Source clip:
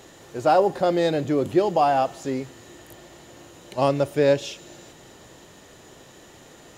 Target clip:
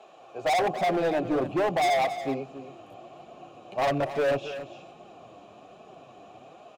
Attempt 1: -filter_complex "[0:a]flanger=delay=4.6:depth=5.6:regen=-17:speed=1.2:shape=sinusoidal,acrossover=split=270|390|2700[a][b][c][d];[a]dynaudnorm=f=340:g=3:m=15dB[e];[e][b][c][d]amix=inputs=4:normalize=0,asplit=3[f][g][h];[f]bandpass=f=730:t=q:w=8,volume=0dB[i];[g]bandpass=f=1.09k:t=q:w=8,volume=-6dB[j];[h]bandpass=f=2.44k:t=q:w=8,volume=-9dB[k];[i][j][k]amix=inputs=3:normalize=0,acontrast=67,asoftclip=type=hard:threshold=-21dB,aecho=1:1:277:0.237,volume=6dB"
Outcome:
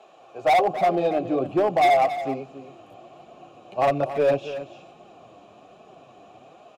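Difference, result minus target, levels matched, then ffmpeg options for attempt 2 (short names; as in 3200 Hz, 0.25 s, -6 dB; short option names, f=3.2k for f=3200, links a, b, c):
hard clip: distortion -4 dB
-filter_complex "[0:a]flanger=delay=4.6:depth=5.6:regen=-17:speed=1.2:shape=sinusoidal,acrossover=split=270|390|2700[a][b][c][d];[a]dynaudnorm=f=340:g=3:m=15dB[e];[e][b][c][d]amix=inputs=4:normalize=0,asplit=3[f][g][h];[f]bandpass=f=730:t=q:w=8,volume=0dB[i];[g]bandpass=f=1.09k:t=q:w=8,volume=-6dB[j];[h]bandpass=f=2.44k:t=q:w=8,volume=-9dB[k];[i][j][k]amix=inputs=3:normalize=0,acontrast=67,asoftclip=type=hard:threshold=-28dB,aecho=1:1:277:0.237,volume=6dB"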